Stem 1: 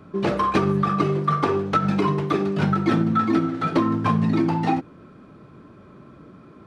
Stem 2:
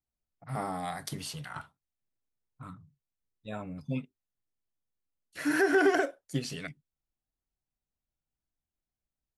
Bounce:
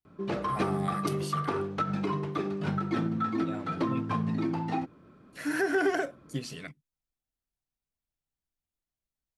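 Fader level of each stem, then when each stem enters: -9.5 dB, -2.5 dB; 0.05 s, 0.00 s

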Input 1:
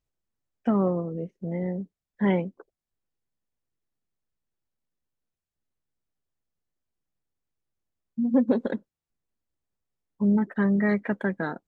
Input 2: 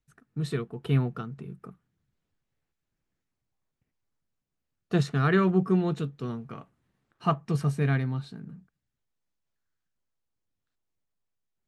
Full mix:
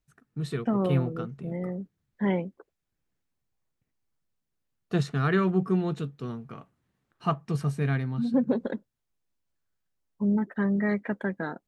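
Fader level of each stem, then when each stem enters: -3.0 dB, -1.5 dB; 0.00 s, 0.00 s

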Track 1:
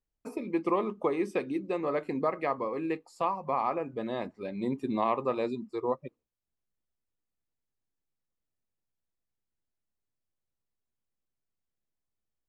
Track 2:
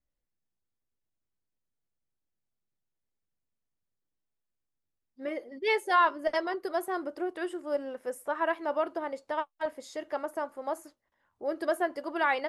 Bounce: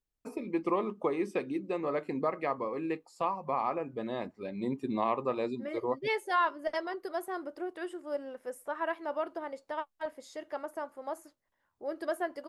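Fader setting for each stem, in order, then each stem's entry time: -2.0 dB, -4.5 dB; 0.00 s, 0.40 s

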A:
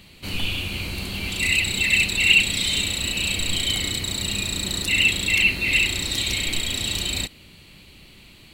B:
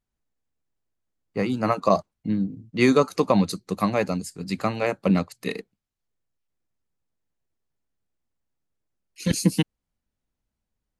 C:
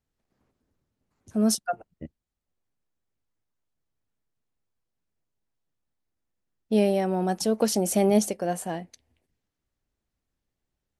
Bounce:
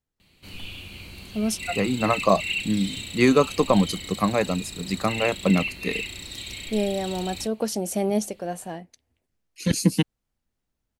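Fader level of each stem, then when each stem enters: -12.0 dB, +0.5 dB, -3.0 dB; 0.20 s, 0.40 s, 0.00 s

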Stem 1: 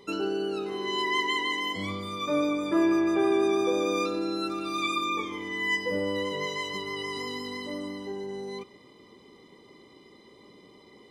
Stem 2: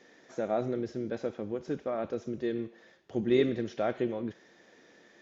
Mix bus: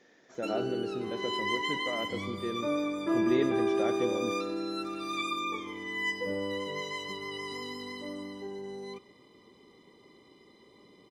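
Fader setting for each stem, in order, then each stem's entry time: -4.5 dB, -3.5 dB; 0.35 s, 0.00 s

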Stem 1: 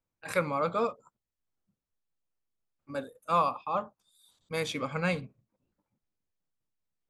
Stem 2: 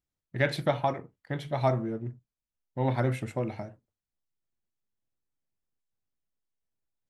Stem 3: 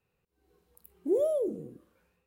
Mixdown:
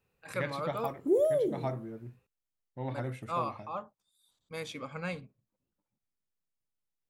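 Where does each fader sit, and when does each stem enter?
-7.5 dB, -9.5 dB, +1.0 dB; 0.00 s, 0.00 s, 0.00 s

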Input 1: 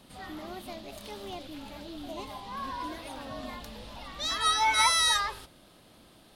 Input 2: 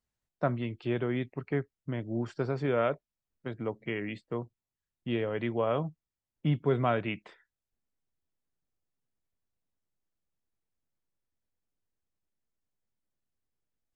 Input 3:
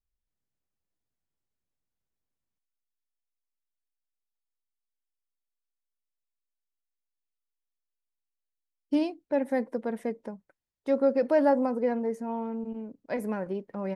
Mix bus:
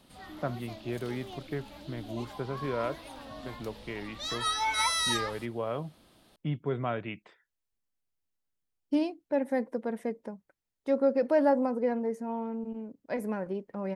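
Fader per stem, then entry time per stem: -4.5 dB, -4.5 dB, -1.5 dB; 0.00 s, 0.00 s, 0.00 s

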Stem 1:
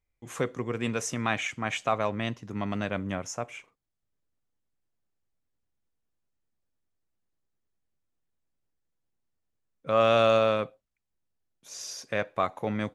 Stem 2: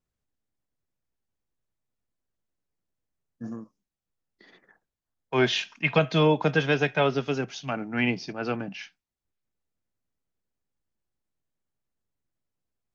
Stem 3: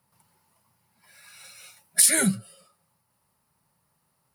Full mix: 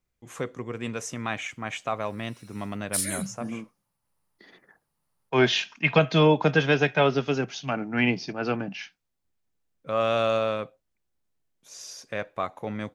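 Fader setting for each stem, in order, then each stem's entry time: -2.5 dB, +2.0 dB, -10.0 dB; 0.00 s, 0.00 s, 0.95 s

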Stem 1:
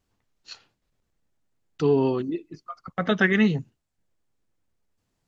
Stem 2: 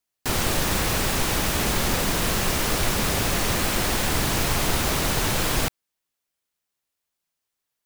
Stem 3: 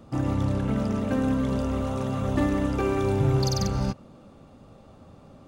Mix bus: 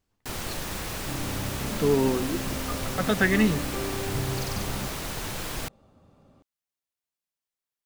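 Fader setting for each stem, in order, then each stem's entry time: -2.0 dB, -10.0 dB, -8.5 dB; 0.00 s, 0.00 s, 0.95 s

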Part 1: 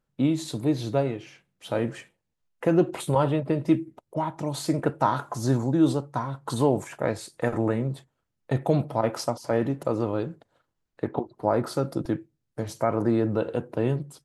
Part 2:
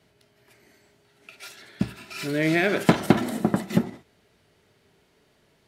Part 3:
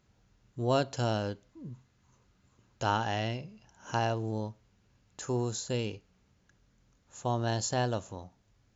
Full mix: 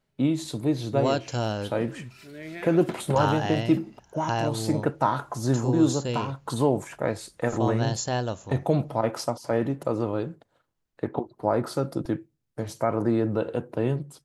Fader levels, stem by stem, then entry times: -0.5 dB, -16.5 dB, +2.5 dB; 0.00 s, 0.00 s, 0.35 s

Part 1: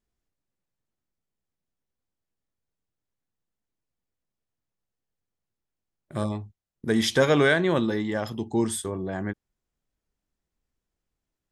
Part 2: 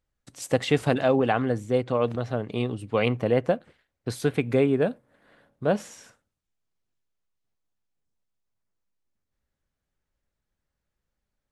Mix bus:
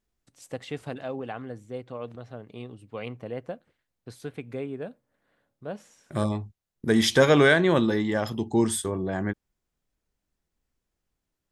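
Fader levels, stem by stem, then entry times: +2.0 dB, -12.5 dB; 0.00 s, 0.00 s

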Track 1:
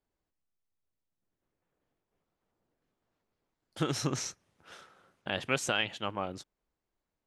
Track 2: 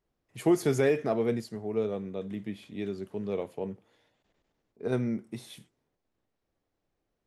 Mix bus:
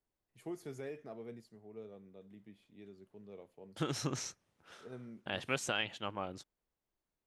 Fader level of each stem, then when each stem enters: -5.0 dB, -19.5 dB; 0.00 s, 0.00 s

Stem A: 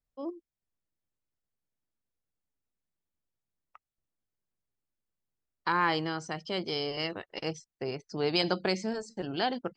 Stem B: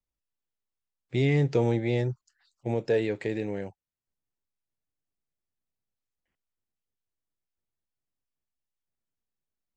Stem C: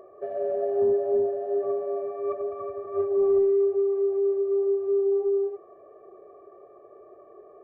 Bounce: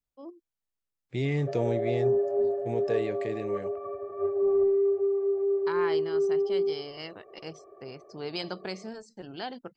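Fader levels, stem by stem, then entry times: -7.0 dB, -4.5 dB, -2.5 dB; 0.00 s, 0.00 s, 1.25 s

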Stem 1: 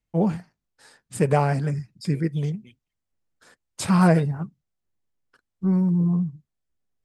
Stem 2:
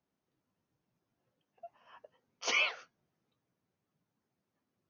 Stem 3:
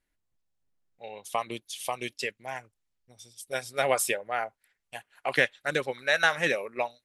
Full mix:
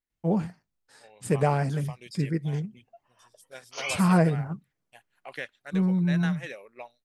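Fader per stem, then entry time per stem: -3.5 dB, -3.5 dB, -13.0 dB; 0.10 s, 1.30 s, 0.00 s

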